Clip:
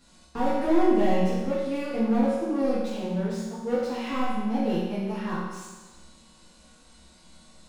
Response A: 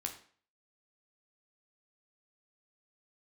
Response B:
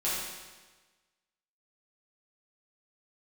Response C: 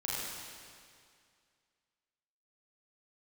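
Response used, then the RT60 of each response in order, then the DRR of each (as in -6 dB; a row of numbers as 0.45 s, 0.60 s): B; 0.45 s, 1.3 s, 2.2 s; 3.0 dB, -10.0 dB, -7.0 dB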